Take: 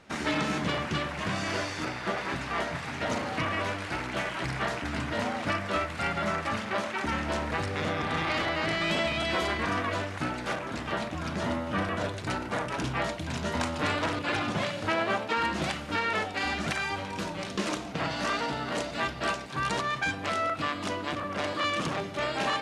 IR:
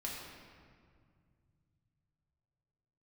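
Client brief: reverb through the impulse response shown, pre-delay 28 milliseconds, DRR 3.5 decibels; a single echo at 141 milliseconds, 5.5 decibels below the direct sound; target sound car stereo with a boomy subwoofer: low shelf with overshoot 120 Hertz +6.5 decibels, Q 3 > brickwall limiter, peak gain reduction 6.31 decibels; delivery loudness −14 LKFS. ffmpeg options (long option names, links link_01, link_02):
-filter_complex "[0:a]aecho=1:1:141:0.531,asplit=2[link_01][link_02];[1:a]atrim=start_sample=2205,adelay=28[link_03];[link_02][link_03]afir=irnorm=-1:irlink=0,volume=-4.5dB[link_04];[link_01][link_04]amix=inputs=2:normalize=0,lowshelf=frequency=120:width_type=q:width=3:gain=6.5,volume=14dB,alimiter=limit=-4dB:level=0:latency=1"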